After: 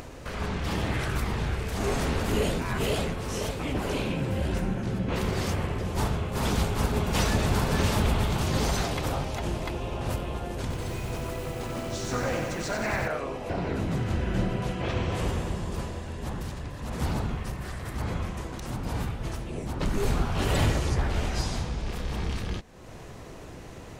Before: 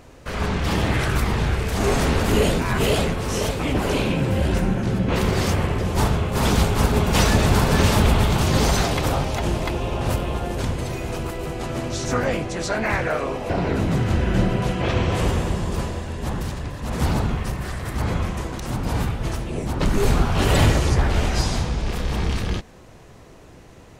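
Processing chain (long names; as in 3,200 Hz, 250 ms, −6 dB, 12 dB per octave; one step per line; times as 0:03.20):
upward compression, threshold −24 dBFS
0:10.61–0:13.08: feedback echo at a low word length 92 ms, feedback 80%, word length 7 bits, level −4.5 dB
level −7.5 dB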